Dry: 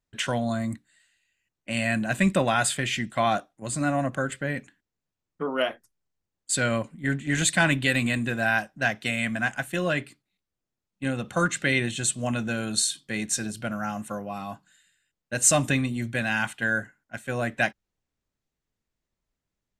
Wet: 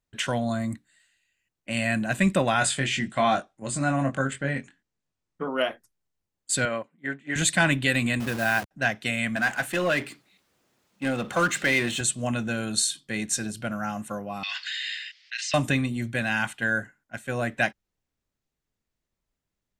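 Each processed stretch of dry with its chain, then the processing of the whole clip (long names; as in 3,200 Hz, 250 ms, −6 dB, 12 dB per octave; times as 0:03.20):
0:02.59–0:05.48: low-pass filter 9,600 Hz 24 dB per octave + double-tracking delay 22 ms −5.5 dB
0:06.65–0:07.36: high-pass filter 93 Hz + bass and treble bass −13 dB, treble −13 dB + expander for the loud parts, over −47 dBFS
0:08.20–0:08.71: hold until the input has moved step −30 dBFS + high-pass filter 85 Hz
0:09.36–0:12.01: high-pass filter 310 Hz 6 dB per octave + high-shelf EQ 4,800 Hz −6 dB + power curve on the samples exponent 0.7
0:14.43–0:15.54: Chebyshev band-pass filter 1,900–5,100 Hz, order 3 + envelope flattener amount 100%
whole clip: no processing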